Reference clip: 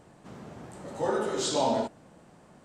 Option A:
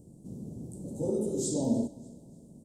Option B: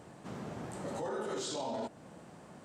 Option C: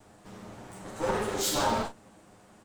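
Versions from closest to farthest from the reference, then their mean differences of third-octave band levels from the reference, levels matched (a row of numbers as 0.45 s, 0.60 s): C, B, A; 4.5 dB, 7.5 dB, 9.5 dB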